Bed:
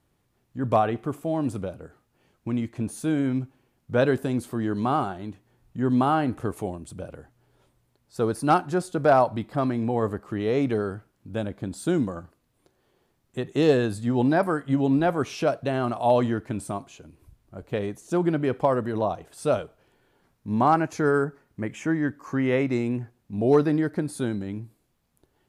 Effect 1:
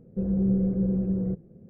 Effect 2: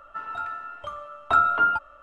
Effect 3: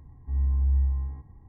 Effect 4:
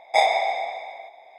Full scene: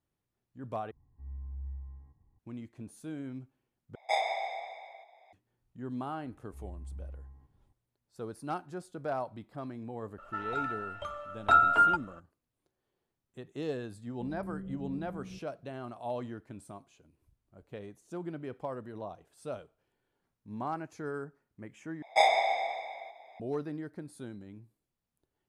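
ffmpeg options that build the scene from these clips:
-filter_complex "[3:a]asplit=2[s0][s1];[4:a]asplit=2[s2][s3];[0:a]volume=0.158[s4];[s2]highpass=370[s5];[s1]equalizer=f=82:t=o:w=1.5:g=-5[s6];[2:a]equalizer=f=1100:w=4.7:g=-7.5[s7];[1:a]bandreject=f=500:w=12[s8];[s4]asplit=4[s9][s10][s11][s12];[s9]atrim=end=0.914[s13];[s0]atrim=end=1.48,asetpts=PTS-STARTPTS,volume=0.133[s14];[s10]atrim=start=2.386:end=3.954[s15];[s5]atrim=end=1.38,asetpts=PTS-STARTPTS,volume=0.282[s16];[s11]atrim=start=5.326:end=22.024[s17];[s3]atrim=end=1.38,asetpts=PTS-STARTPTS,volume=0.562[s18];[s12]atrim=start=23.396[s19];[s6]atrim=end=1.48,asetpts=PTS-STARTPTS,volume=0.168,afade=t=in:d=0.004:c=hsin,afade=t=out:st=1.476:d=0.004:c=hsin,adelay=6250[s20];[s7]atrim=end=2.02,asetpts=PTS-STARTPTS,volume=0.891,afade=t=in:d=0.004:c=hsin,afade=t=out:st=2.016:d=0.004:c=hsin,adelay=448938S[s21];[s8]atrim=end=1.69,asetpts=PTS-STARTPTS,volume=0.126,afade=t=in:d=0.004:c=hsin,afade=t=out:st=1.686:d=0.004:c=hsin,adelay=14040[s22];[s13][s14]acrossfade=d=0.004:c1=hsin:c2=hsin[s23];[s23][s15]acrossfade=d=0.004:c1=hsin:c2=hsin[s24];[s24][s16]acrossfade=d=0.004:c1=hsin:c2=hsin[s25];[s25][s17]acrossfade=d=0.004:c1=hsin:c2=hsin[s26];[s26][s18]acrossfade=d=0.004:c1=hsin:c2=hsin[s27];[s27][s19]acrossfade=d=0.004:c1=hsin:c2=hsin[s28];[s28][s20][s21][s22]amix=inputs=4:normalize=0"

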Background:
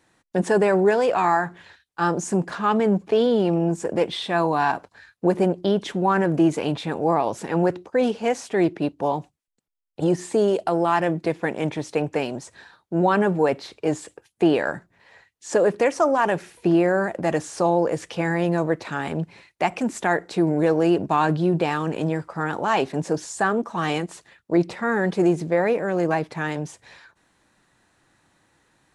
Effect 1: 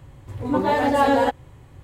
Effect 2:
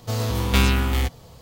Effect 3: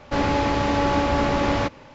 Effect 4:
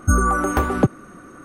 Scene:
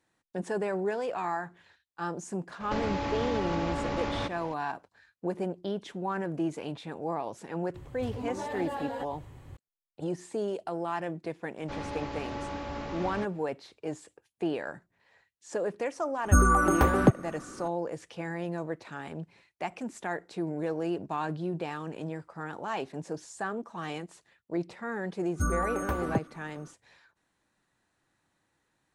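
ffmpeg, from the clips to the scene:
-filter_complex "[3:a]asplit=2[s0][s1];[4:a]asplit=2[s2][s3];[0:a]volume=0.237[s4];[s0]acompressor=threshold=0.0398:ratio=6:attack=3.2:release=140:knee=1:detection=peak[s5];[1:a]acompressor=threshold=0.0282:ratio=6:attack=3.2:release=140:knee=1:detection=peak[s6];[s5]atrim=end=1.94,asetpts=PTS-STARTPTS,volume=0.944,afade=t=in:d=0.004:c=hsin,afade=t=out:st=1.936:d=0.004:c=hsin,adelay=2600[s7];[s6]atrim=end=1.83,asetpts=PTS-STARTPTS,volume=0.75,afade=t=in:d=0.004:c=hsin,afade=t=out:st=1.826:d=0.004:c=hsin,adelay=7740[s8];[s1]atrim=end=1.94,asetpts=PTS-STARTPTS,volume=0.158,afade=t=in:d=0.004:c=hsin,afade=t=out:st=1.936:d=0.004:c=hsin,adelay=11570[s9];[s2]atrim=end=1.44,asetpts=PTS-STARTPTS,volume=0.668,afade=t=in:d=0.004:c=hsin,afade=t=out:st=1.436:d=0.004:c=hsin,adelay=16240[s10];[s3]atrim=end=1.44,asetpts=PTS-STARTPTS,volume=0.251,afade=t=in:d=0.1,afade=t=out:st=1.34:d=0.1,adelay=25320[s11];[s4][s7][s8][s9][s10][s11]amix=inputs=6:normalize=0"

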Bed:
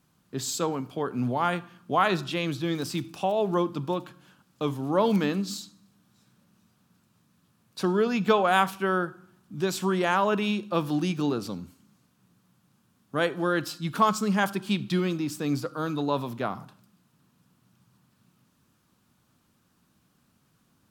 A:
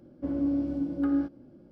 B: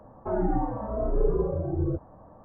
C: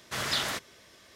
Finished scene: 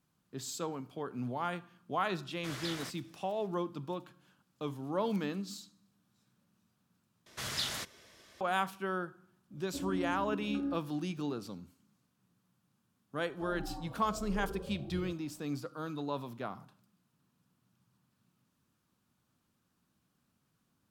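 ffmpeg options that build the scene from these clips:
-filter_complex "[3:a]asplit=2[s0][s1];[0:a]volume=0.316[s2];[s1]acrossover=split=200|3000[s3][s4][s5];[s4]acompressor=threshold=0.0141:ratio=6:attack=3.2:release=140:knee=2.83:detection=peak[s6];[s3][s6][s5]amix=inputs=3:normalize=0[s7];[s2]asplit=2[s8][s9];[s8]atrim=end=7.264[s10];[s7]atrim=end=1.15,asetpts=PTS-STARTPTS,volume=0.668[s11];[s9]atrim=start=8.406[s12];[s0]atrim=end=1.15,asetpts=PTS-STARTPTS,volume=0.251,afade=t=in:d=0.004:c=hsin,afade=t=out:st=1.146:d=0.004:c=hsin,adelay=2320[s13];[1:a]atrim=end=1.71,asetpts=PTS-STARTPTS,volume=0.316,afade=t=in:d=0.004:c=hsin,afade=t=out:st=1.706:d=0.004:c=hsin,adelay=9510[s14];[2:a]atrim=end=2.44,asetpts=PTS-STARTPTS,volume=0.15,afade=t=in:d=0.004:c=hsin,afade=t=out:st=2.436:d=0.004:c=hsin,adelay=13150[s15];[s10][s11]acrossfade=d=0.004:c1=hsin:c2=hsin[s16];[s16][s12]acrossfade=d=0.004:c1=hsin:c2=hsin[s17];[s17][s13][s14][s15]amix=inputs=4:normalize=0"

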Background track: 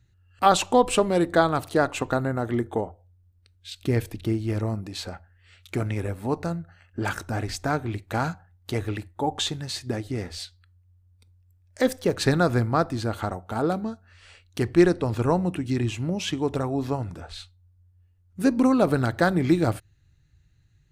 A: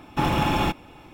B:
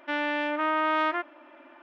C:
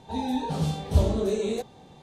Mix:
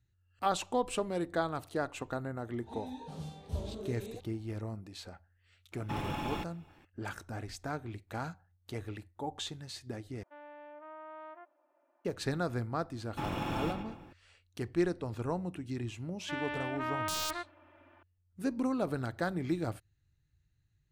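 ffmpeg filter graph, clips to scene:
-filter_complex "[1:a]asplit=2[s0][s1];[2:a]asplit=2[s2][s3];[0:a]volume=0.237[s4];[s2]bandpass=f=660:t=q:w=1.5:csg=0[s5];[s1]asplit=2[s6][s7];[s7]adelay=113,lowpass=f=2700:p=1,volume=0.562,asplit=2[s8][s9];[s9]adelay=113,lowpass=f=2700:p=1,volume=0.55,asplit=2[s10][s11];[s11]adelay=113,lowpass=f=2700:p=1,volume=0.55,asplit=2[s12][s13];[s13]adelay=113,lowpass=f=2700:p=1,volume=0.55,asplit=2[s14][s15];[s15]adelay=113,lowpass=f=2700:p=1,volume=0.55,asplit=2[s16][s17];[s17]adelay=113,lowpass=f=2700:p=1,volume=0.55,asplit=2[s18][s19];[s19]adelay=113,lowpass=f=2700:p=1,volume=0.55[s20];[s6][s8][s10][s12][s14][s16][s18][s20]amix=inputs=8:normalize=0[s21];[s3]aeval=exprs='(mod(5.62*val(0)+1,2)-1)/5.62':c=same[s22];[s4]asplit=2[s23][s24];[s23]atrim=end=10.234[s25];[s5]atrim=end=1.82,asetpts=PTS-STARTPTS,volume=0.133[s26];[s24]atrim=start=12.046[s27];[3:a]atrim=end=2.02,asetpts=PTS-STARTPTS,volume=0.158,afade=t=in:d=0.004:c=hsin,afade=t=out:st=2.016:d=0.004:c=hsin,adelay=2580[s28];[s0]atrim=end=1.13,asetpts=PTS-STARTPTS,volume=0.188,afade=t=in:d=0.004:c=hsin,afade=t=out:st=1.126:d=0.004:c=hsin,adelay=5720[s29];[s21]atrim=end=1.13,asetpts=PTS-STARTPTS,volume=0.188,afade=t=in:d=0.004:c=hsin,afade=t=out:st=1.126:d=0.004:c=hsin,adelay=573300S[s30];[s22]atrim=end=1.82,asetpts=PTS-STARTPTS,volume=0.335,afade=t=in:d=0.004:c=hsin,afade=t=out:st=1.816:d=0.004:c=hsin,adelay=16210[s31];[s25][s26]acrossfade=d=0.004:c1=hsin:c2=hsin[s32];[s32][s27]acrossfade=d=0.004:c1=hsin:c2=hsin[s33];[s33][s28][s29][s30][s31]amix=inputs=5:normalize=0"

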